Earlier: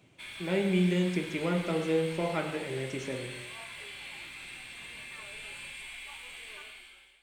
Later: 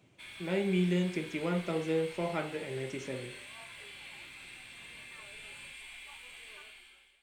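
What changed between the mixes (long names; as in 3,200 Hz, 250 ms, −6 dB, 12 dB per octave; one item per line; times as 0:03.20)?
background −3.0 dB
reverb: off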